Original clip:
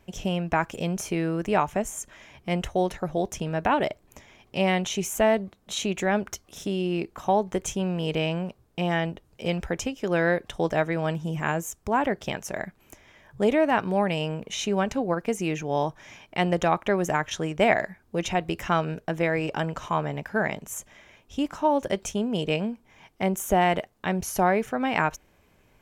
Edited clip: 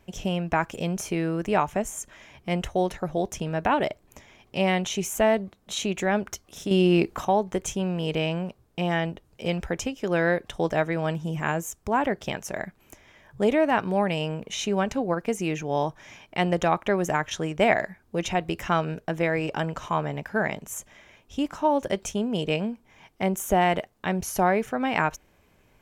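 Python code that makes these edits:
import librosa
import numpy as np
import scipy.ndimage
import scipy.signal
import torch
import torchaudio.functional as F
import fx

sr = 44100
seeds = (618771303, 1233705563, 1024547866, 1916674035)

y = fx.edit(x, sr, fx.clip_gain(start_s=6.71, length_s=0.54, db=7.5), tone=tone)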